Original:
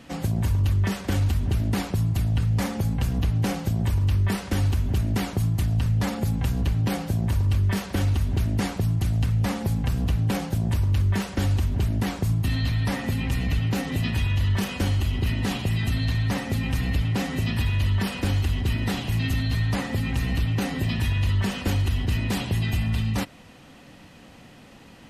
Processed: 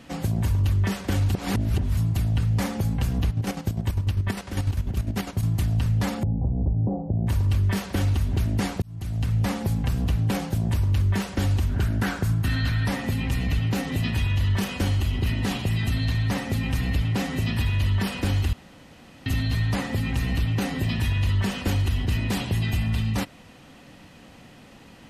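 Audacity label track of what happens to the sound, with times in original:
1.320000	1.970000	reverse
3.270000	5.430000	square tremolo 10 Hz, depth 60%, duty 40%
6.230000	7.270000	steep low-pass 770 Hz
8.820000	9.350000	fade in linear
11.690000	12.870000	peaking EQ 1.5 kHz +12.5 dB 0.42 oct
18.530000	19.260000	room tone

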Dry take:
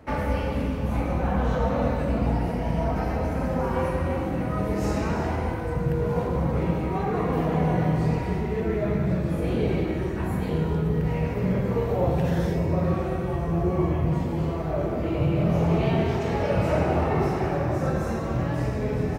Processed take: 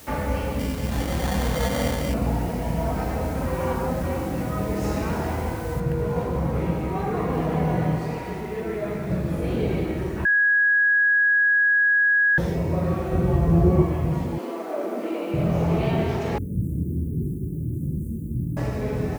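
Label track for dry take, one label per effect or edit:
0.590000	2.140000	sample-rate reducer 2.6 kHz
3.460000	4.030000	reverse
5.800000	5.800000	noise floor step -47 dB -56 dB
7.980000	9.100000	peaking EQ 74 Hz -10 dB 2.9 oct
10.250000	12.380000	bleep 1.66 kHz -15.5 dBFS
13.130000	13.830000	bass shelf 450 Hz +8.5 dB
14.380000	15.340000	brick-wall FIR high-pass 200 Hz
16.380000	18.570000	inverse Chebyshev band-stop 670–4800 Hz, stop band 50 dB

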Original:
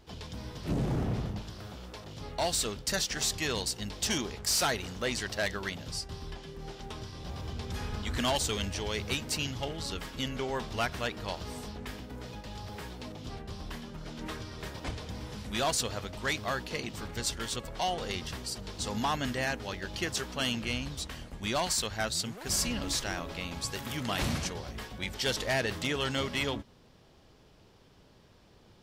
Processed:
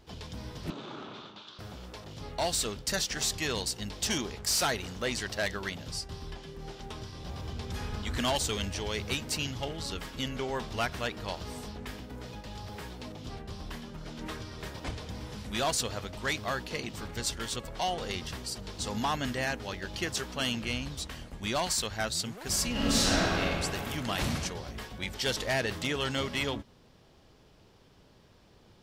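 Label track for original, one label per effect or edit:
0.700000	1.590000	cabinet simulation 480–5500 Hz, peaks and dips at 490 Hz -8 dB, 720 Hz -9 dB, 1.3 kHz +5 dB, 1.9 kHz -8 dB, 3.6 kHz +8 dB, 5.2 kHz -6 dB
22.710000	23.410000	reverb throw, RT60 2.6 s, DRR -8 dB

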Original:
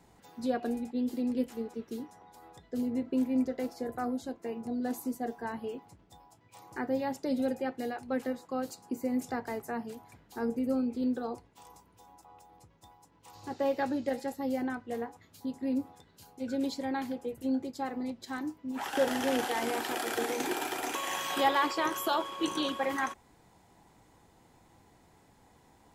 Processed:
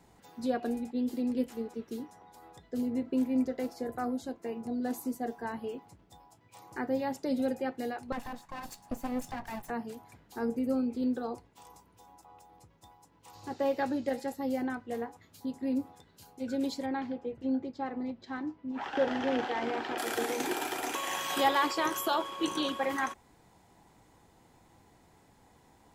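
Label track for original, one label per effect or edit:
8.120000	9.700000	comb filter that takes the minimum delay 1.1 ms
16.860000	19.980000	distance through air 200 m
21.290000	22.010000	tone controls bass +1 dB, treble +3 dB

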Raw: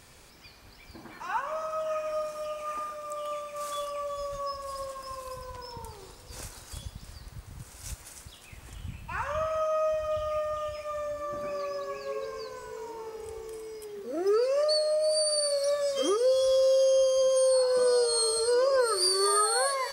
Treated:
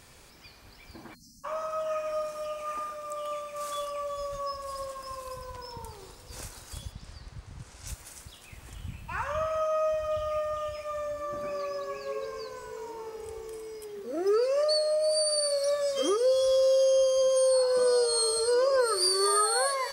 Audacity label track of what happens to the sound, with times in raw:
1.140000	1.440000	spectral selection erased 290–4100 Hz
6.920000	7.870000	low-pass 7 kHz

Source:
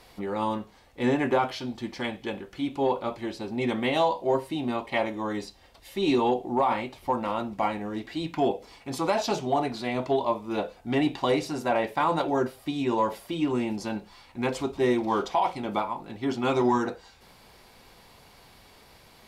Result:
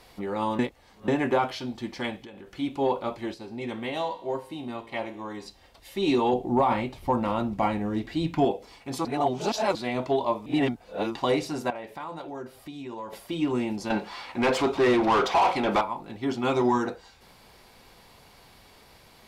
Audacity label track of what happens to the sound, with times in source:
0.590000	1.080000	reverse
2.170000	2.570000	compression 16:1, threshold -40 dBFS
3.340000	5.460000	feedback comb 57 Hz, decay 0.7 s
6.330000	8.450000	bass shelf 230 Hz +10.5 dB
9.050000	9.750000	reverse
10.460000	11.150000	reverse
11.700000	13.130000	compression 2:1, threshold -44 dBFS
13.900000	15.810000	overdrive pedal drive 22 dB, tone 2.4 kHz, clips at -14 dBFS

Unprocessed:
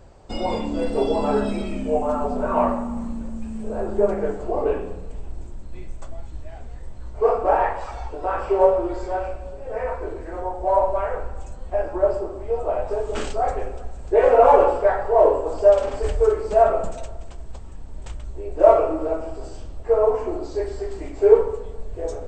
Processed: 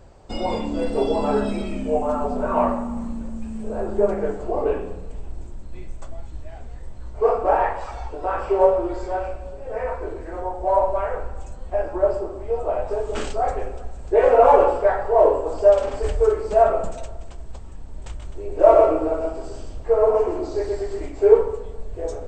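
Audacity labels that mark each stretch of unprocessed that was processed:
18.090000	21.060000	delay 125 ms -3.5 dB

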